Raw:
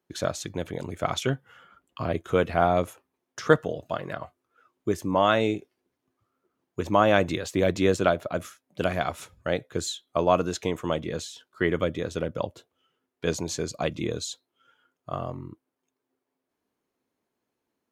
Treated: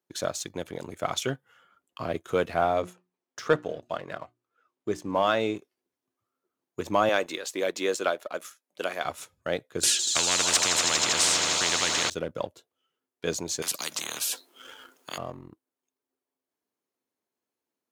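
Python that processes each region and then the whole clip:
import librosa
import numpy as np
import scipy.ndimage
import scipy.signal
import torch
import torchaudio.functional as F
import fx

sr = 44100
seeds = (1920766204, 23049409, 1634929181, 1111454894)

y = fx.chain(x, sr, fx.air_absorb(metres=58.0),
    fx.hum_notches(base_hz=60, count=6), at=(2.61, 5.55))
y = fx.chain(y, sr, fx.highpass(hz=380.0, slope=12),
    fx.peak_eq(hz=670.0, db=-4.0, octaves=0.26), at=(7.09, 9.05))
y = fx.chain(y, sr, fx.lowpass(hz=7000.0, slope=12),
    fx.echo_swell(ms=80, loudest=5, wet_db=-18.0),
    fx.spectral_comp(ratio=10.0), at=(9.83, 12.1))
y = fx.chain(y, sr, fx.highpass(hz=200.0, slope=24),
    fx.spectral_comp(ratio=10.0), at=(13.62, 15.18))
y = scipy.signal.sosfilt(scipy.signal.butter(2, 79.0, 'highpass', fs=sr, output='sos'), y)
y = fx.bass_treble(y, sr, bass_db=-5, treble_db=5)
y = fx.leveller(y, sr, passes=1)
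y = F.gain(torch.from_numpy(y), -5.5).numpy()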